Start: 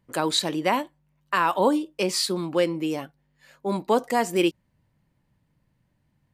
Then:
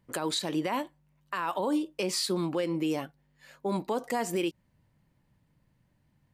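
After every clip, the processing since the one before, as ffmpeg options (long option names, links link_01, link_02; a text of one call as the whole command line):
ffmpeg -i in.wav -af "alimiter=limit=-20.5dB:level=0:latency=1:release=119" out.wav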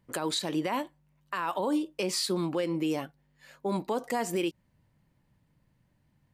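ffmpeg -i in.wav -af anull out.wav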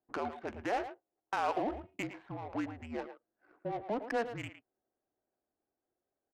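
ffmpeg -i in.wav -filter_complex "[0:a]highpass=frequency=580:width_type=q:width=0.5412,highpass=frequency=580:width_type=q:width=1.307,lowpass=frequency=2900:width_type=q:width=0.5176,lowpass=frequency=2900:width_type=q:width=0.7071,lowpass=frequency=2900:width_type=q:width=1.932,afreqshift=-230,adynamicsmooth=sensitivity=6:basefreq=600,asplit=2[link_01][link_02];[link_02]adelay=110,highpass=300,lowpass=3400,asoftclip=type=hard:threshold=-29dB,volume=-10dB[link_03];[link_01][link_03]amix=inputs=2:normalize=0" out.wav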